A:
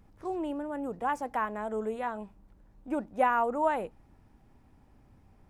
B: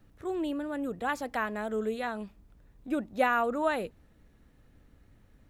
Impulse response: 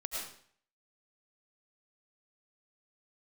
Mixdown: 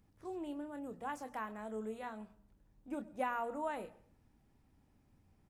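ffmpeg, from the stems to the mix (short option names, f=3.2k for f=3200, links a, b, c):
-filter_complex "[0:a]lowshelf=f=65:g=-11.5,bandreject=f=60:t=h:w=6,bandreject=f=120:t=h:w=6,bandreject=f=180:t=h:w=6,bandreject=f=240:t=h:w=6,volume=-5dB,asplit=2[a][b];[b]volume=-18.5dB[c];[1:a]alimiter=limit=-22dB:level=0:latency=1,adelay=27,volume=-17dB[d];[2:a]atrim=start_sample=2205[e];[c][e]afir=irnorm=-1:irlink=0[f];[a][d][f]amix=inputs=3:normalize=0,equalizer=f=830:w=0.37:g=-7.5"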